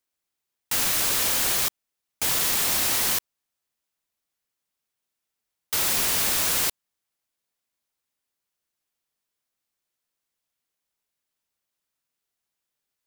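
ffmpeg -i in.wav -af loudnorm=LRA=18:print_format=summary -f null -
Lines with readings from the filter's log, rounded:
Input Integrated:    -21.6 LUFS
Input True Peak:      -9.8 dBTP
Input LRA:             4.0 LU
Input Threshold:     -31.6 LUFS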